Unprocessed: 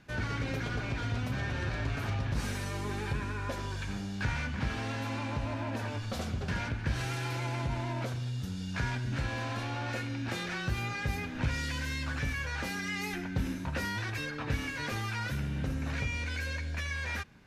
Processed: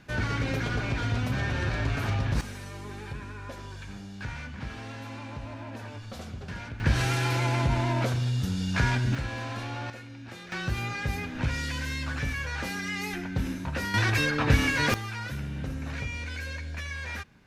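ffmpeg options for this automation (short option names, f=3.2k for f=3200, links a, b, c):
-af "asetnsamples=n=441:p=0,asendcmd='2.41 volume volume -4.5dB;6.8 volume volume 8dB;9.15 volume volume 0.5dB;9.9 volume volume -8dB;10.52 volume volume 2.5dB;13.94 volume volume 11dB;14.94 volume volume -0.5dB',volume=5dB"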